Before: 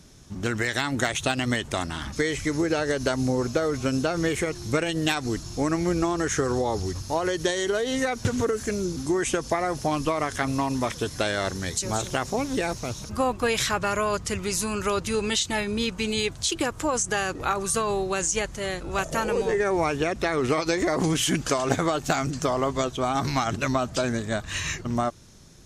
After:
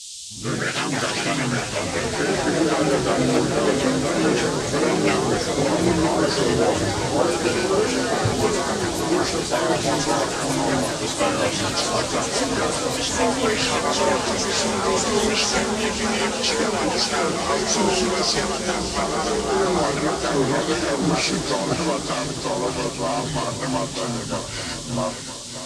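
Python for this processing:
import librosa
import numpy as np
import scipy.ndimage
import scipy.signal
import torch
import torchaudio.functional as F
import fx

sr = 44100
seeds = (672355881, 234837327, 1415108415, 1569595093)

p1 = fx.partial_stretch(x, sr, pct=89)
p2 = fx.echo_pitch(p1, sr, ms=105, semitones=3, count=3, db_per_echo=-3.0)
p3 = p2 + fx.echo_swing(p2, sr, ms=965, ratio=1.5, feedback_pct=65, wet_db=-9, dry=0)
p4 = fx.dmg_noise_band(p3, sr, seeds[0], low_hz=3000.0, high_hz=8800.0, level_db=-36.0)
p5 = fx.band_widen(p4, sr, depth_pct=70)
y = p5 * 10.0 ** (2.5 / 20.0)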